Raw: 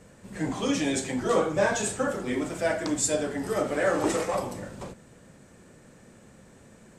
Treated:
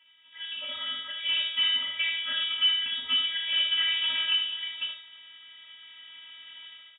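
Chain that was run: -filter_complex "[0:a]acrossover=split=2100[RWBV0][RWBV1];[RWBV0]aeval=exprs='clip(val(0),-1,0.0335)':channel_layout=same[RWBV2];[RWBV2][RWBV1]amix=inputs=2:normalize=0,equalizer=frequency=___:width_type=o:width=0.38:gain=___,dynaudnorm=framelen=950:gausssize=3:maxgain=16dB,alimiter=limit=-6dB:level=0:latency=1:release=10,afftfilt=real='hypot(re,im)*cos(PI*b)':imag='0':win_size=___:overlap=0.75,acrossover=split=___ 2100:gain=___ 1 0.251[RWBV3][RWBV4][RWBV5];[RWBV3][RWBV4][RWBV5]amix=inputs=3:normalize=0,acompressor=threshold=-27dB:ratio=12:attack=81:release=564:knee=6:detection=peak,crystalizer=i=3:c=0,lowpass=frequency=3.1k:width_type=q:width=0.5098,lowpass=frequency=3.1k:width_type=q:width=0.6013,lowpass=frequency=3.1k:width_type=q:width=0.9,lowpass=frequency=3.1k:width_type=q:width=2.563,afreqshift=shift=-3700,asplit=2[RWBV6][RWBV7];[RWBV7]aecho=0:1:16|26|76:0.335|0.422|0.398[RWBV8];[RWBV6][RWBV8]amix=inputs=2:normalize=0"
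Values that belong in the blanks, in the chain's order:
720, 8, 512, 580, 0.178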